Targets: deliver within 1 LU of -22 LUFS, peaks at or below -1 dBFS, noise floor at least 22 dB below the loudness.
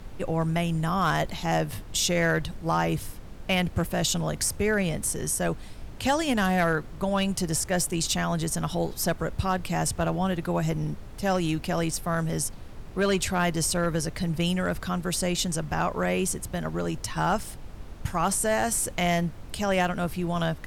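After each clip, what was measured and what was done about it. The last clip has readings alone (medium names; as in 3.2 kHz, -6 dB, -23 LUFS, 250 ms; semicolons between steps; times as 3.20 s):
clipped samples 0.3%; clipping level -16.0 dBFS; noise floor -42 dBFS; noise floor target -49 dBFS; loudness -27.0 LUFS; peak level -16.0 dBFS; loudness target -22.0 LUFS
-> clip repair -16 dBFS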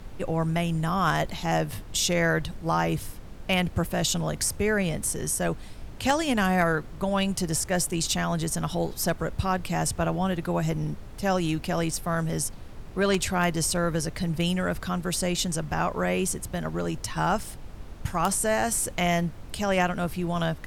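clipped samples 0.0%; noise floor -42 dBFS; noise floor target -49 dBFS
-> noise print and reduce 7 dB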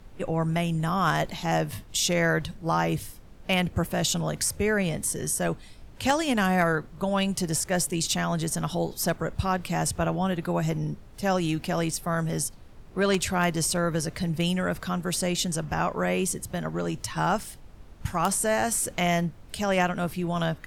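noise floor -48 dBFS; noise floor target -49 dBFS
-> noise print and reduce 6 dB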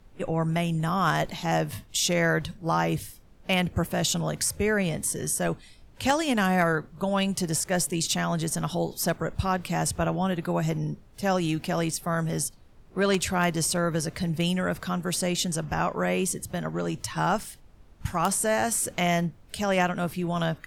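noise floor -52 dBFS; loudness -27.0 LUFS; peak level -7.0 dBFS; loudness target -22.0 LUFS
-> trim +5 dB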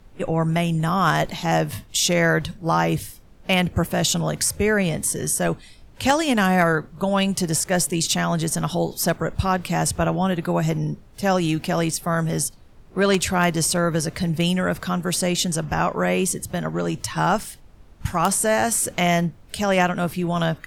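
loudness -22.0 LUFS; peak level -2.0 dBFS; noise floor -47 dBFS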